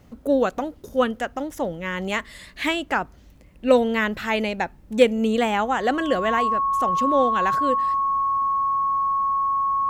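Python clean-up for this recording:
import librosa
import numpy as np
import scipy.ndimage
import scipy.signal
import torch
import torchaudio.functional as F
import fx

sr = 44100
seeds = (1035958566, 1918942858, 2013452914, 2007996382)

y = fx.fix_declip(x, sr, threshold_db=-5.0)
y = fx.notch(y, sr, hz=1100.0, q=30.0)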